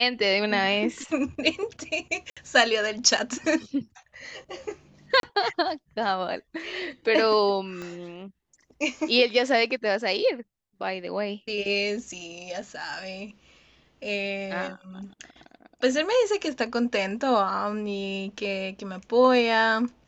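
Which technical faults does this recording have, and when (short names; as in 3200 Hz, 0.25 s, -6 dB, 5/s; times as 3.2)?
2.3–2.37 gap 66 ms
5.2–5.23 gap 32 ms
7.82 pop -23 dBFS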